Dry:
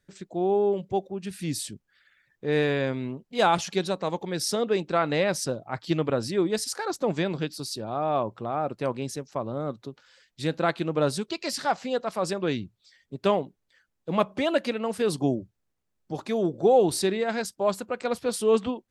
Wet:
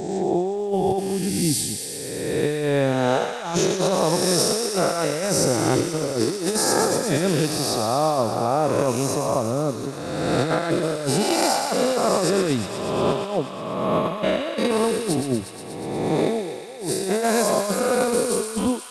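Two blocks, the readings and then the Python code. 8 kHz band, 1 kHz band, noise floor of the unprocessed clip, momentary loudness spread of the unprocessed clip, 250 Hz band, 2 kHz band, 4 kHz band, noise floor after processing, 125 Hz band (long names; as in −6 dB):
+11.5 dB, +4.5 dB, −77 dBFS, 10 LU, +6.0 dB, +4.0 dB, +7.0 dB, −32 dBFS, +6.5 dB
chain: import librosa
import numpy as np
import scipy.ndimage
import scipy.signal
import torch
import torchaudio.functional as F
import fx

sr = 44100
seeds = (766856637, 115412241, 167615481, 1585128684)

y = fx.spec_swells(x, sr, rise_s=1.73)
y = fx.peak_eq(y, sr, hz=2400.0, db=-7.5, octaves=2.6)
y = fx.over_compress(y, sr, threshold_db=-26.0, ratio=-0.5)
y = fx.echo_wet_highpass(y, sr, ms=120, feedback_pct=80, hz=1600.0, wet_db=-6.5)
y = y * librosa.db_to_amplitude(5.0)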